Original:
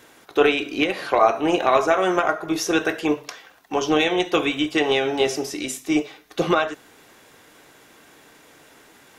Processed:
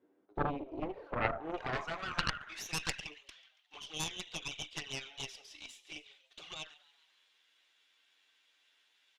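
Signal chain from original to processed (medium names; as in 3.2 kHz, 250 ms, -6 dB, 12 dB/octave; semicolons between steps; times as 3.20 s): 1.57–3.00 s: frequency weighting ITU-R 468; in parallel at -4.5 dB: saturation -11 dBFS, distortion -16 dB; on the sum: touch-sensitive flanger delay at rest 11.3 ms, full sweep at -11 dBFS; band-pass sweep 320 Hz -> 3.3 kHz, 0.65–3.21 s; on a send: frequency-shifting echo 140 ms, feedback 55%, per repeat +110 Hz, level -19 dB; on the sum: Chebyshev shaper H 3 -8 dB, 4 -27 dB, 7 -39 dB, 8 -29 dB, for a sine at -5 dBFS; trim -1.5 dB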